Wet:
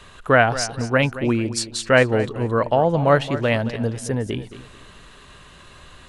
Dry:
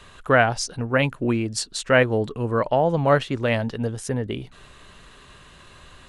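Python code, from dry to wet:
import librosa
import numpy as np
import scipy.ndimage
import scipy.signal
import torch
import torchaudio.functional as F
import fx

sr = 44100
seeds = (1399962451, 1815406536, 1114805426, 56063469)

y = fx.echo_feedback(x, sr, ms=221, feedback_pct=29, wet_db=-14)
y = y * 10.0 ** (2.0 / 20.0)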